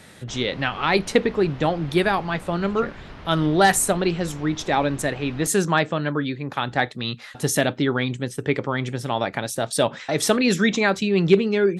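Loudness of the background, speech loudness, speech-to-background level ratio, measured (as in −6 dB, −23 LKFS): −42.0 LKFS, −22.5 LKFS, 19.5 dB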